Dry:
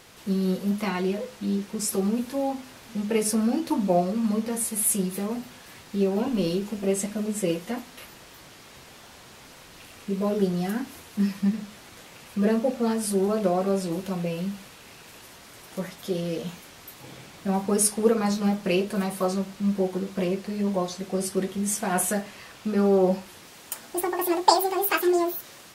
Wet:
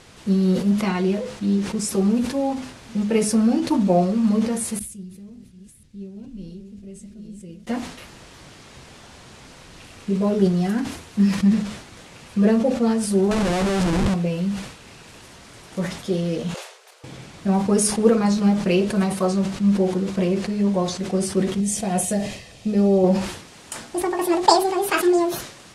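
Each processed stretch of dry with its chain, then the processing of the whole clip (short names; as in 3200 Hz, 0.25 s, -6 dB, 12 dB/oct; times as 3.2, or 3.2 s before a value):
4.79–7.67 reverse delay 0.521 s, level -9 dB + passive tone stack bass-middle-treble 10-0-1
13.31–14.14 low shelf 68 Hz +5 dB + Schmitt trigger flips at -36 dBFS
16.54–17.04 level quantiser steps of 11 dB + frequency shift +350 Hz
21.6–23.04 bell 1300 Hz -14.5 dB 0.82 oct + comb 1.6 ms, depth 33%
whole clip: LPF 10000 Hz 24 dB/oct; low shelf 230 Hz +7.5 dB; sustainer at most 86 dB/s; gain +2 dB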